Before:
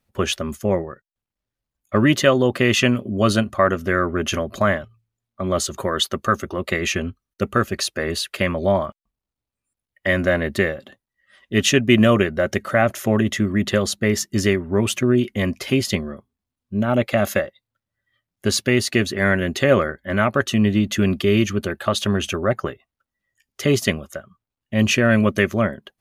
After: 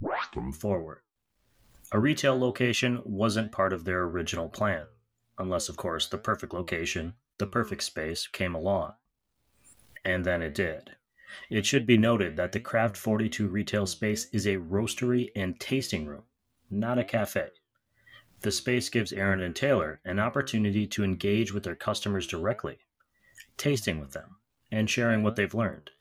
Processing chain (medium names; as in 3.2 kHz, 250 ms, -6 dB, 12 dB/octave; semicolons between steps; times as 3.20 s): tape start-up on the opening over 0.57 s; upward compressor, threshold -20 dBFS; flange 1.1 Hz, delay 6.2 ms, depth 9 ms, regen +75%; trim -4.5 dB